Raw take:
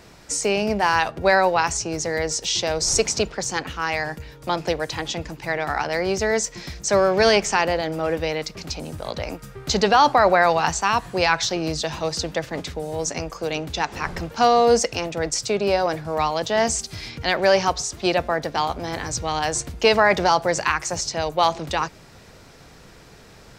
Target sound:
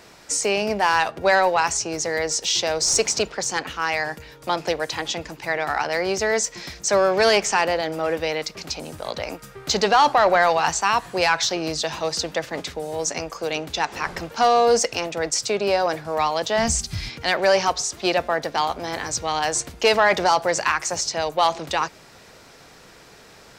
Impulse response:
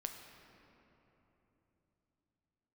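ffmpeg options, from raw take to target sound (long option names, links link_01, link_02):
-filter_complex "[0:a]lowshelf=frequency=210:gain=-11.5,asoftclip=type=tanh:threshold=-9.5dB,asplit=3[link_01][link_02][link_03];[link_01]afade=type=out:start_time=16.57:duration=0.02[link_04];[link_02]asubboost=boost=9:cutoff=140,afade=type=in:start_time=16.57:duration=0.02,afade=type=out:start_time=17.08:duration=0.02[link_05];[link_03]afade=type=in:start_time=17.08:duration=0.02[link_06];[link_04][link_05][link_06]amix=inputs=3:normalize=0,volume=2dB"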